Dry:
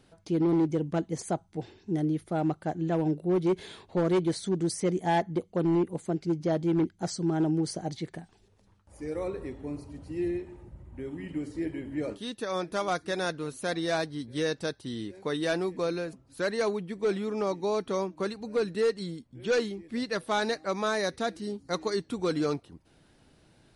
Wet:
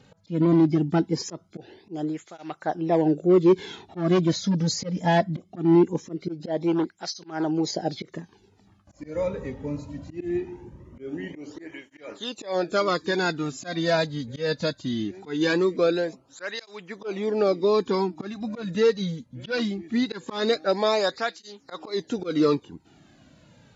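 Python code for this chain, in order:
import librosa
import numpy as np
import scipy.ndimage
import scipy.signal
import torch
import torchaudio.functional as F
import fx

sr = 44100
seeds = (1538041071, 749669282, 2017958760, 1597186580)

y = fx.freq_compress(x, sr, knee_hz=3400.0, ratio=1.5)
y = fx.auto_swell(y, sr, attack_ms=164.0)
y = fx.dynamic_eq(y, sr, hz=4700.0, q=2.8, threshold_db=-56.0, ratio=4.0, max_db=5)
y = fx.flanger_cancel(y, sr, hz=0.21, depth_ms=3.0)
y = y * 10.0 ** (9.0 / 20.0)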